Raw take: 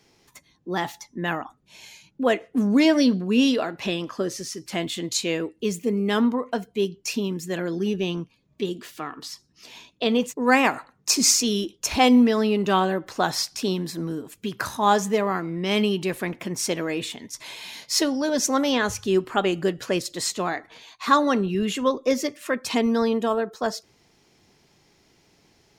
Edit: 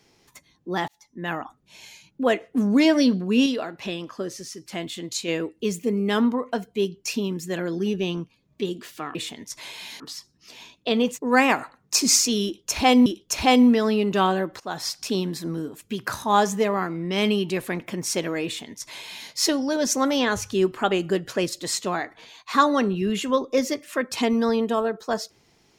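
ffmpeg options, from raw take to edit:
-filter_complex "[0:a]asplit=8[a][b][c][d][e][f][g][h];[a]atrim=end=0.88,asetpts=PTS-STARTPTS,afade=t=out:st=0.876:d=0.004:c=hsin[i];[b]atrim=start=0.88:end=3.462,asetpts=PTS-STARTPTS,afade=t=in:d=0.55[j];[c]atrim=start=3.458:end=5.282,asetpts=PTS-STARTPTS,volume=-4dB[k];[d]atrim=start=5.278:end=9.152[l];[e]atrim=start=16.978:end=17.832[m];[f]atrim=start=9.148:end=12.212[n];[g]atrim=start=11.588:end=13.13,asetpts=PTS-STARTPTS,afade=t=out:st=1.538:d=0.004:c=hsin:silence=0.177828[o];[h]atrim=start=13.13,asetpts=PTS-STARTPTS,afade=t=in:d=0.43:silence=0.177828[p];[i][j]concat=n=2:v=0:a=1[q];[q][k]acrossfade=d=0.004:c1=hsin:c2=hsin[r];[r][l]acrossfade=d=0.004:c1=hsin:c2=hsin[s];[s][m]acrossfade=d=0.004:c1=hsin:c2=hsin[t];[t][n]acrossfade=d=0.004:c1=hsin:c2=hsin[u];[o][p]concat=n=2:v=0:a=1[v];[u][v]acrossfade=d=0.004:c1=hsin:c2=hsin"

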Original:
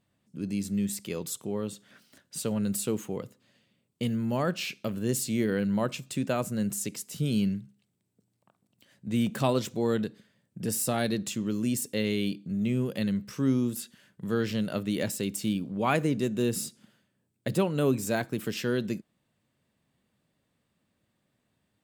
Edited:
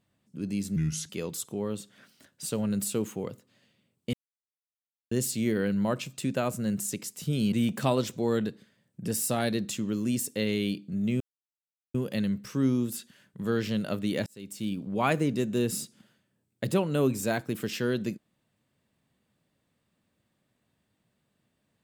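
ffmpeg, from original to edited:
-filter_complex "[0:a]asplit=8[a][b][c][d][e][f][g][h];[a]atrim=end=0.764[i];[b]atrim=start=0.76:end=1.02,asetpts=PTS-STARTPTS,asetrate=34398,aresample=44100[j];[c]atrim=start=1.016:end=4.06,asetpts=PTS-STARTPTS,afade=t=out:st=3.04:d=0.004:c=hsin[k];[d]atrim=start=4.06:end=5.04,asetpts=PTS-STARTPTS,volume=0[l];[e]atrim=start=5.04:end=7.452,asetpts=PTS-STARTPTS,afade=t=in:d=0.004:c=hsin[m];[f]atrim=start=9.098:end=12.78,asetpts=PTS-STARTPTS,afade=t=out:st=3.678:d=0.004:c=hsin,apad=pad_dur=0.74[n];[g]atrim=start=12.78:end=15.1,asetpts=PTS-STARTPTS,afade=t=in:d=0.004:c=hsin,afade=t=out:st=2.316:d=0.004:c=hsin[o];[h]atrim=start=15.1,asetpts=PTS-STARTPTS,afade=t=in:d=0.61[p];[i][j]acrossfade=d=0.004:c1=hsin:c2=hsin[q];[k][l][m]concat=n=3:v=0:a=1[r];[q][r]acrossfade=d=0.004:c1=hsin:c2=hsin[s];[n][o][p]concat=n=3:v=0:a=1[t];[s][t]acrossfade=d=0.004:c1=hsin:c2=hsin"

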